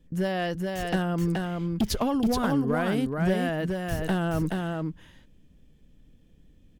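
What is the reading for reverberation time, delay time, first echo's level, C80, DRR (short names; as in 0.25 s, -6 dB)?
none, 0.426 s, -3.5 dB, none, none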